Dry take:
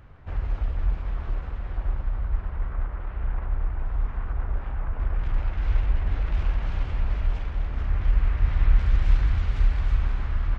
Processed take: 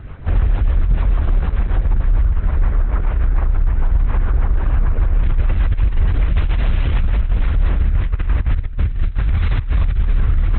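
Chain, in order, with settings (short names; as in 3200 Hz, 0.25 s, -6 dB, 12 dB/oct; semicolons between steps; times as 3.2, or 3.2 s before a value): 6.36–7.08 high shelf 2400 Hz -> 2700 Hz +7 dB; negative-ratio compressor -23 dBFS, ratio -0.5; rotary speaker horn 6.7 Hz, later 0.7 Hz, at 7.18; maximiser +23 dB; gain -7 dB; Opus 8 kbps 48000 Hz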